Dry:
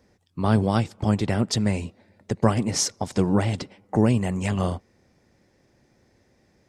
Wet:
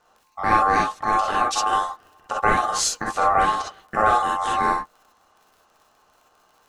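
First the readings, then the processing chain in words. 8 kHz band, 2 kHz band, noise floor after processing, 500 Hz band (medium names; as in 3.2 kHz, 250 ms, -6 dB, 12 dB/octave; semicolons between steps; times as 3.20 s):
+2.0 dB, +10.5 dB, -61 dBFS, -0.5 dB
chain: crackle 44 per s -43 dBFS; ring modulator 970 Hz; gated-style reverb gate 80 ms rising, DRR -2.5 dB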